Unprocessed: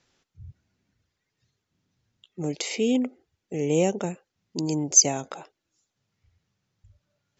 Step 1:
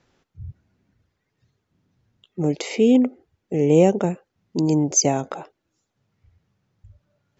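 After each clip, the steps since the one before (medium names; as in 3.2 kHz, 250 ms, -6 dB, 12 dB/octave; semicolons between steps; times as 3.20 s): treble shelf 2.3 kHz -12 dB; trim +8 dB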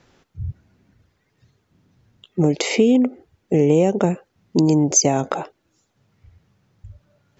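compression 6:1, threshold -20 dBFS, peak gain reduction 10.5 dB; trim +8 dB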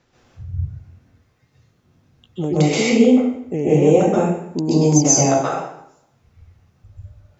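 plate-style reverb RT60 0.76 s, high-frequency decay 0.8×, pre-delay 115 ms, DRR -9 dB; trim -6.5 dB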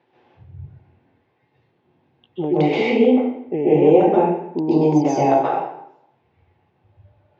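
cabinet simulation 180–3300 Hz, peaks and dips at 210 Hz -5 dB, 370 Hz +6 dB, 860 Hz +9 dB, 1.3 kHz -8 dB; trim -1 dB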